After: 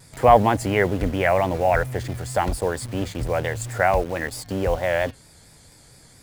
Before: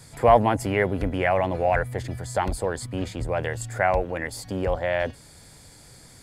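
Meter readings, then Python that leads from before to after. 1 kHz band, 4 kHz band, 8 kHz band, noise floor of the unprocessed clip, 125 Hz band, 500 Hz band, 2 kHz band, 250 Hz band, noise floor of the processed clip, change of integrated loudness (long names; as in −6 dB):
+3.0 dB, +3.5 dB, +3.0 dB, −50 dBFS, +2.5 dB, +2.5 dB, +2.5 dB, +2.5 dB, −51 dBFS, +2.5 dB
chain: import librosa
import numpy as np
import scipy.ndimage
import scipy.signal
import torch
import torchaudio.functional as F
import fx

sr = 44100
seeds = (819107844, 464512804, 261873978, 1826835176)

p1 = fx.vibrato(x, sr, rate_hz=4.4, depth_cents=79.0)
p2 = fx.quant_dither(p1, sr, seeds[0], bits=6, dither='none')
p3 = p1 + (p2 * librosa.db_to_amplitude(-4.5))
y = p3 * librosa.db_to_amplitude(-1.5)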